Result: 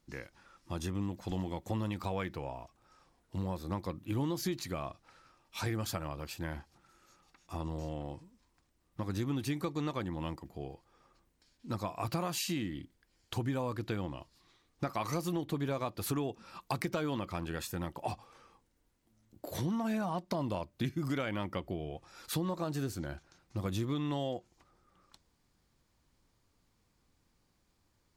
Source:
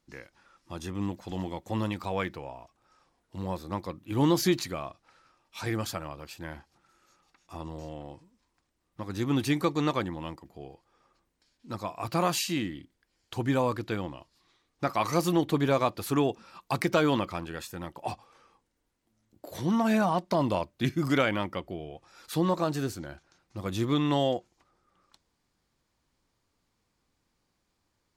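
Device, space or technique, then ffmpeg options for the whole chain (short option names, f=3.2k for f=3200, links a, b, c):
ASMR close-microphone chain: -af "lowshelf=f=200:g=6,acompressor=threshold=-32dB:ratio=5,highshelf=f=9.7k:g=4"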